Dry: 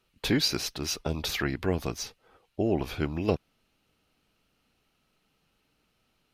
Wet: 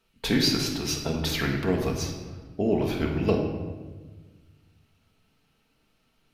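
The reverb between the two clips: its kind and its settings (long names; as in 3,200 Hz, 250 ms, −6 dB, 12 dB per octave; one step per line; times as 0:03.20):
rectangular room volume 1,100 cubic metres, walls mixed, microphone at 1.6 metres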